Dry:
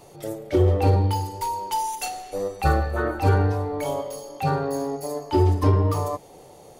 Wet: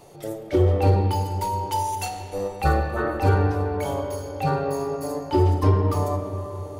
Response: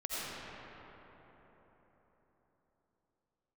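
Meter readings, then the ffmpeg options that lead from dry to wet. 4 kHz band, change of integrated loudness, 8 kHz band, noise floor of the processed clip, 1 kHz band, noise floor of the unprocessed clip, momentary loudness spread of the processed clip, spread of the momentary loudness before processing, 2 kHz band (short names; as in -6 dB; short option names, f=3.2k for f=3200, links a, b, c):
-1.0 dB, 0.0 dB, -1.5 dB, -38 dBFS, +0.5 dB, -48 dBFS, 11 LU, 11 LU, 0.0 dB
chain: -filter_complex "[0:a]asplit=2[a][b];[1:a]atrim=start_sample=2205,lowpass=4.9k[c];[b][c]afir=irnorm=-1:irlink=0,volume=-11.5dB[d];[a][d]amix=inputs=2:normalize=0,volume=-1.5dB"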